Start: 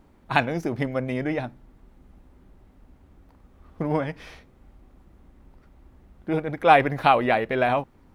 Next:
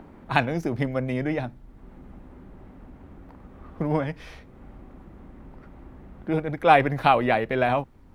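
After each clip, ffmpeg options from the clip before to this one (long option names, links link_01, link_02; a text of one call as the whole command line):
ffmpeg -i in.wav -filter_complex "[0:a]lowshelf=frequency=140:gain=6,acrossover=split=120|2600[link_01][link_02][link_03];[link_02]acompressor=mode=upward:threshold=-36dB:ratio=2.5[link_04];[link_01][link_04][link_03]amix=inputs=3:normalize=0,volume=-1dB" out.wav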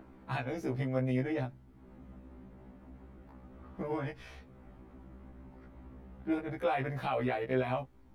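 ffmpeg -i in.wav -af "alimiter=limit=-14dB:level=0:latency=1:release=134,afftfilt=real='re*1.73*eq(mod(b,3),0)':imag='im*1.73*eq(mod(b,3),0)':win_size=2048:overlap=0.75,volume=-5dB" out.wav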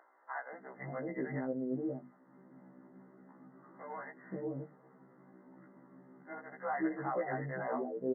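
ffmpeg -i in.wav -filter_complex "[0:a]bandreject=frequency=50:width_type=h:width=6,bandreject=frequency=100:width_type=h:width=6,bandreject=frequency=150:width_type=h:width=6,bandreject=frequency=200:width_type=h:width=6,bandreject=frequency=250:width_type=h:width=6,acrossover=split=600[link_01][link_02];[link_01]adelay=530[link_03];[link_03][link_02]amix=inputs=2:normalize=0,afftfilt=real='re*between(b*sr/4096,130,2100)':imag='im*between(b*sr/4096,130,2100)':win_size=4096:overlap=0.75,volume=-1dB" out.wav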